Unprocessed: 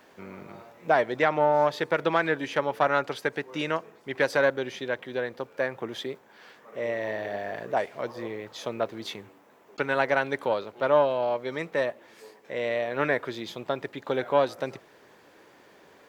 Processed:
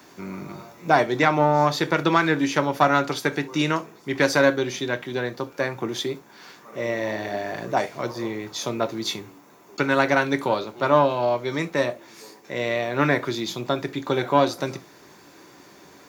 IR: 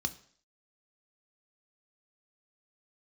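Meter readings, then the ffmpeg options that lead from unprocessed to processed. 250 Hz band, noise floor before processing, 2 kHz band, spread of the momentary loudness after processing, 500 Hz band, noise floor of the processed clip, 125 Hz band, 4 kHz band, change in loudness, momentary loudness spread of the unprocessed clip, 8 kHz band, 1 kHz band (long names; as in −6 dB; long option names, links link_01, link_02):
+9.5 dB, −56 dBFS, +4.0 dB, 13 LU, +2.5 dB, −50 dBFS, +10.5 dB, +8.0 dB, +4.5 dB, 14 LU, can't be measured, +5.5 dB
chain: -filter_complex "[0:a]highshelf=frequency=5400:gain=11.5[link_01];[1:a]atrim=start_sample=2205,atrim=end_sample=3528[link_02];[link_01][link_02]afir=irnorm=-1:irlink=0,volume=1.5dB"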